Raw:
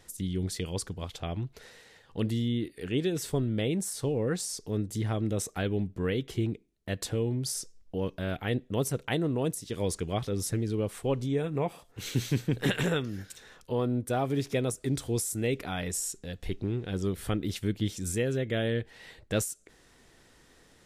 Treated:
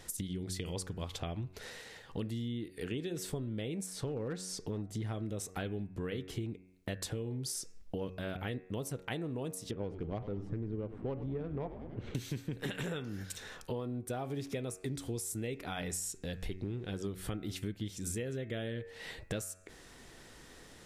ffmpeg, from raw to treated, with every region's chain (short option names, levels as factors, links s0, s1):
-filter_complex "[0:a]asettb=1/sr,asplit=3[s0][s1][s2];[s0]atrim=end=3.864[s3];[s1]atrim=start=3.86:end=5.02,asetpts=PTS-STARTPTS,afade=t=in:d=0.004:c=qsin,afade=t=out:st=1.156:d=0.004:c=qsin,lowpass=f=3900:p=1,volume=15,asoftclip=hard,volume=0.0668[s4];[s2]atrim=start=5.016[s5];[s3][s4]acrossfade=d=0.004:c1=hsin:c2=qsin[s6];[s6][s5]acrossfade=d=0.004:c1=qsin:c2=hsin,asettb=1/sr,asplit=3[s7][s8][s9];[s7]atrim=end=9.714[s10];[s8]atrim=start=9.71:end=12.15,asetpts=PTS-STARTPTS,afade=t=in:d=0.004:c=qsin,afade=t=out:st=2.436:d=0.004:c=qsin,adynamicsmooth=sensitivity=1:basefreq=870,asplit=8[s11][s12][s13][s14][s15][s16][s17][s18];[s12]adelay=98,afreqshift=-100,volume=0.211[s19];[s13]adelay=196,afreqshift=-200,volume=0.135[s20];[s14]adelay=294,afreqshift=-300,volume=0.0861[s21];[s15]adelay=392,afreqshift=-400,volume=0.0556[s22];[s16]adelay=490,afreqshift=-500,volume=0.0355[s23];[s17]adelay=588,afreqshift=-600,volume=0.0226[s24];[s18]adelay=686,afreqshift=-700,volume=0.0145[s25];[s11][s19][s20][s21][s22][s23][s24][s25]amix=inputs=8:normalize=0,atrim=end_sample=107604[s26];[s9]atrim=start=12.146[s27];[s10][s26]acrossfade=d=0.004:c1=hsin:c2=qsin[s28];[s28][s27]acrossfade=d=0.004:c1=qsin:c2=hsin,bandreject=f=92.66:t=h:w=4,bandreject=f=185.32:t=h:w=4,bandreject=f=277.98:t=h:w=4,bandreject=f=370.64:t=h:w=4,bandreject=f=463.3:t=h:w=4,bandreject=f=555.96:t=h:w=4,bandreject=f=648.62:t=h:w=4,bandreject=f=741.28:t=h:w=4,bandreject=f=833.94:t=h:w=4,bandreject=f=926.6:t=h:w=4,bandreject=f=1019.26:t=h:w=4,bandreject=f=1111.92:t=h:w=4,bandreject=f=1204.58:t=h:w=4,bandreject=f=1297.24:t=h:w=4,bandreject=f=1389.9:t=h:w=4,bandreject=f=1482.56:t=h:w=4,bandreject=f=1575.22:t=h:w=4,bandreject=f=1667.88:t=h:w=4,bandreject=f=1760.54:t=h:w=4,bandreject=f=1853.2:t=h:w=4,bandreject=f=1945.86:t=h:w=4,bandreject=f=2038.52:t=h:w=4,bandreject=f=2131.18:t=h:w=4,bandreject=f=2223.84:t=h:w=4,bandreject=f=2316.5:t=h:w=4,bandreject=f=2409.16:t=h:w=4,bandreject=f=2501.82:t=h:w=4,bandreject=f=2594.48:t=h:w=4,bandreject=f=2687.14:t=h:w=4,acompressor=threshold=0.00891:ratio=6,volume=1.78"